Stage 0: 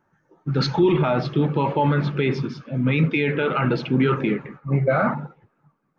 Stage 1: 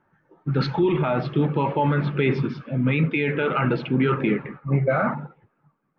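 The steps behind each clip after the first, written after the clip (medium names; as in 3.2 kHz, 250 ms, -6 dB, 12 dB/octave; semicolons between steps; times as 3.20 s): Chebyshev low-pass 2.8 kHz, order 2; gain riding within 4 dB 0.5 s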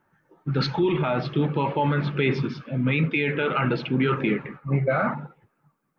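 treble shelf 4 kHz +11.5 dB; trim -2 dB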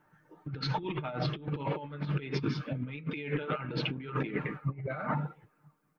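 comb 6.6 ms, depth 45%; compressor with a negative ratio -27 dBFS, ratio -0.5; trim -6 dB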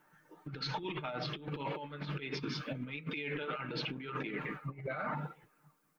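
treble shelf 2.5 kHz +9 dB; peak limiter -26 dBFS, peak gain reduction 10.5 dB; peaking EQ 85 Hz -11.5 dB 1.2 oct; trim -1.5 dB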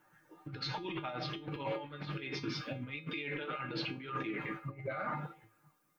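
feedback comb 110 Hz, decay 0.27 s, harmonics odd, mix 80%; trim +9.5 dB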